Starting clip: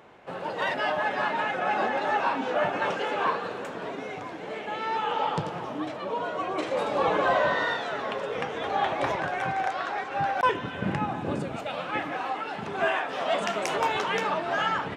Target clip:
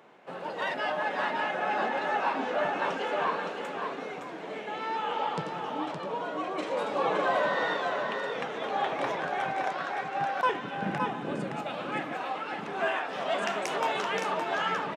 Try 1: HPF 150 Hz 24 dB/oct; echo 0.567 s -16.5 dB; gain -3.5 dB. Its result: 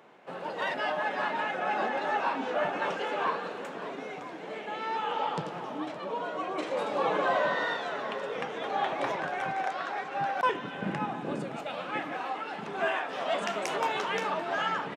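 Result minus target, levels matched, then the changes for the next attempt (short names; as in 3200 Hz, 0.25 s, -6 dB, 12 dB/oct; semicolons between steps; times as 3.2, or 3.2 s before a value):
echo-to-direct -10.5 dB
change: echo 0.567 s -6 dB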